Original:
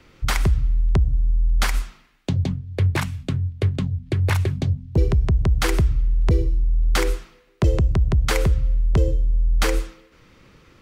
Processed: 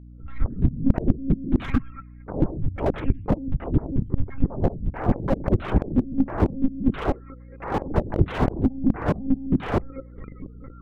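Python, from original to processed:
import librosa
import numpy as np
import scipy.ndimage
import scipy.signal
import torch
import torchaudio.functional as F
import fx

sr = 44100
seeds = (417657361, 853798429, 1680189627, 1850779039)

y = fx.fade_in_head(x, sr, length_s=0.96)
y = fx.over_compress(y, sr, threshold_db=-25.0, ratio=-0.5, at=(4.04, 4.65))
y = fx.spec_topn(y, sr, count=16)
y = fx.fold_sine(y, sr, drive_db=19, ceiling_db=-7.5)
y = fx.volume_shaper(y, sr, bpm=135, per_beat=2, depth_db=-23, release_ms=193.0, shape='slow start')
y = fx.bandpass_edges(y, sr, low_hz=200.0, high_hz=2700.0, at=(7.05, 7.86))
y = fx.air_absorb(y, sr, metres=270.0, at=(8.91, 9.54))
y = fx.lpc_monotone(y, sr, seeds[0], pitch_hz=270.0, order=16)
y = fx.add_hum(y, sr, base_hz=60, snr_db=21)
y = fx.slew_limit(y, sr, full_power_hz=86.0)
y = y * librosa.db_to_amplitude(-3.0)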